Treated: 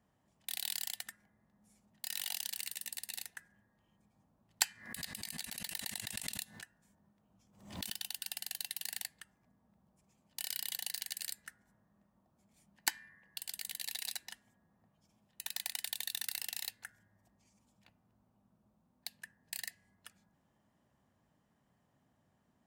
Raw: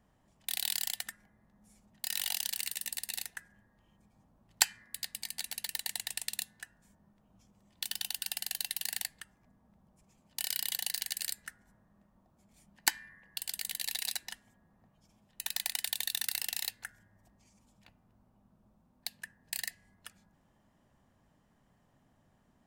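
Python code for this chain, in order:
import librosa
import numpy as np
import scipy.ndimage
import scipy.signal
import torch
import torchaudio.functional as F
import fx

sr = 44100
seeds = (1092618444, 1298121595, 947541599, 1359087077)

y = scipy.signal.sosfilt(scipy.signal.butter(2, 69.0, 'highpass', fs=sr, output='sos'), x)
y = fx.pre_swell(y, sr, db_per_s=98.0, at=(4.7, 7.94))
y = y * librosa.db_to_amplitude(-5.0)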